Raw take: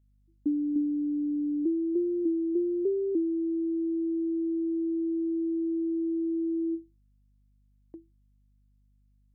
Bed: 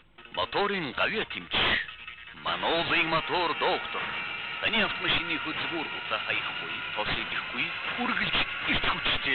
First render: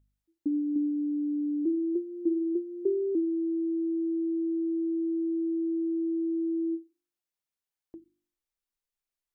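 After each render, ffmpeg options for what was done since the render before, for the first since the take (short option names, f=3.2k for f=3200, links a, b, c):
-af "bandreject=f=50:t=h:w=4,bandreject=f=100:t=h:w=4,bandreject=f=150:t=h:w=4,bandreject=f=200:t=h:w=4,bandreject=f=250:t=h:w=4,bandreject=f=300:t=h:w=4,bandreject=f=350:t=h:w=4"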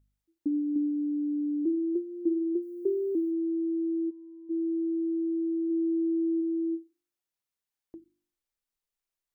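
-filter_complex "[0:a]asplit=3[a][b][c];[a]afade=t=out:st=2.61:d=0.02[d];[b]aemphasis=mode=production:type=75fm,afade=t=in:st=2.61:d=0.02,afade=t=out:st=3.3:d=0.02[e];[c]afade=t=in:st=3.3:d=0.02[f];[d][e][f]amix=inputs=3:normalize=0,asplit=3[g][h][i];[g]afade=t=out:st=4.09:d=0.02[j];[h]agate=range=-33dB:threshold=-19dB:ratio=3:release=100:detection=peak,afade=t=in:st=4.09:d=0.02,afade=t=out:st=4.49:d=0.02[k];[i]afade=t=in:st=4.49:d=0.02[l];[j][k][l]amix=inputs=3:normalize=0,asplit=3[m][n][o];[m]afade=t=out:st=5.69:d=0.02[p];[n]equalizer=f=470:w=3.9:g=14,afade=t=in:st=5.69:d=0.02,afade=t=out:st=6.4:d=0.02[q];[o]afade=t=in:st=6.4:d=0.02[r];[p][q][r]amix=inputs=3:normalize=0"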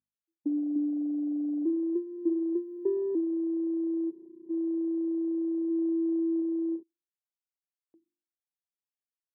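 -af "highpass=200,afwtdn=0.0178"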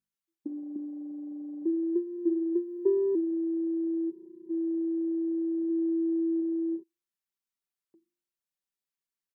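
-af "equalizer=f=660:w=4.5:g=-10.5,aecho=1:1:5.2:0.63"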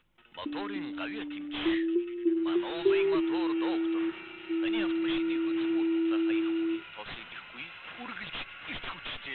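-filter_complex "[1:a]volume=-12dB[a];[0:a][a]amix=inputs=2:normalize=0"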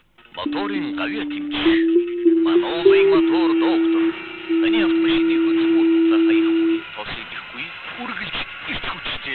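-af "volume=12dB"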